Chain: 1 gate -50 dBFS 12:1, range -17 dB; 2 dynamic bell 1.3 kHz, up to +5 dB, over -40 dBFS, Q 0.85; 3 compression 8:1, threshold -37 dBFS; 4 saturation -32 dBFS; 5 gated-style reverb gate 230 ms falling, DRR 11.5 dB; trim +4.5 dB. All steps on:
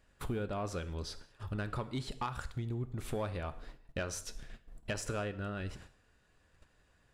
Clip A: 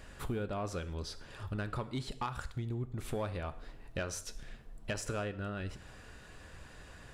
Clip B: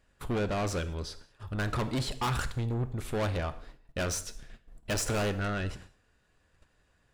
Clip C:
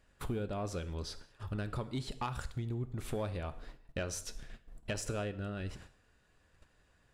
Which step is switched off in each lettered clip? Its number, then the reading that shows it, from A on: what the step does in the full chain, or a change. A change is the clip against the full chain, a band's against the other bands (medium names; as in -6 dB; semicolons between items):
1, momentary loudness spread change +5 LU; 3, mean gain reduction 10.0 dB; 2, 2 kHz band -2.5 dB